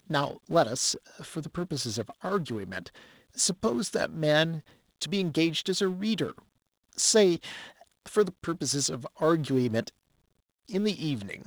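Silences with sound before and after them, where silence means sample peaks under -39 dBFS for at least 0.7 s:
9.89–10.69 s

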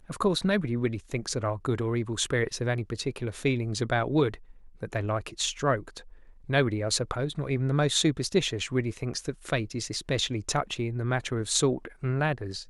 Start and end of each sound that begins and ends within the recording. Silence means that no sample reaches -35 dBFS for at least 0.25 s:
4.83–5.99 s

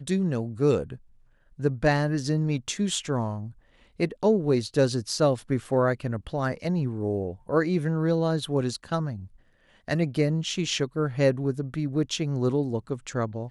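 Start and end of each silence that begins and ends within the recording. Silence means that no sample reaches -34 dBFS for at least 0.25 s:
0.95–1.60 s
3.48–4.00 s
9.24–9.88 s

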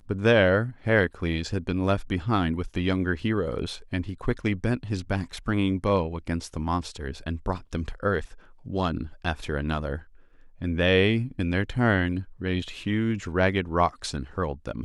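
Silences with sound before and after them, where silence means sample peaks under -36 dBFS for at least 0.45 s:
9.99–10.61 s

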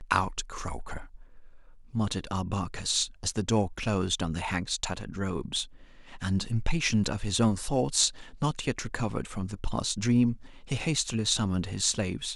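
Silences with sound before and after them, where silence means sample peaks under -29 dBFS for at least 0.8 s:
0.97–1.95 s

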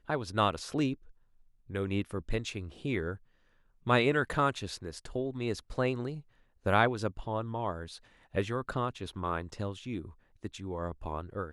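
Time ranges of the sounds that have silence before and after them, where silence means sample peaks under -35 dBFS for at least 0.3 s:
1.72–3.15 s
3.87–6.18 s
6.66–7.94 s
8.35–10.05 s

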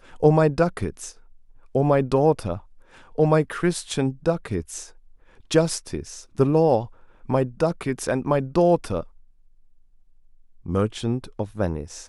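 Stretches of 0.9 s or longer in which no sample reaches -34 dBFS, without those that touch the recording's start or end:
9.03–10.66 s

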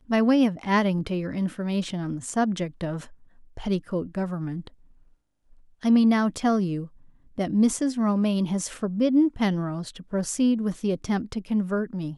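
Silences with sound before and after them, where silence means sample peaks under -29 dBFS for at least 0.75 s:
4.67–5.83 s

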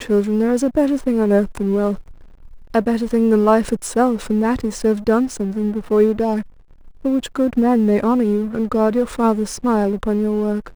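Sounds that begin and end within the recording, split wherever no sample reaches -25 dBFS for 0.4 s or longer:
2.74–6.41 s

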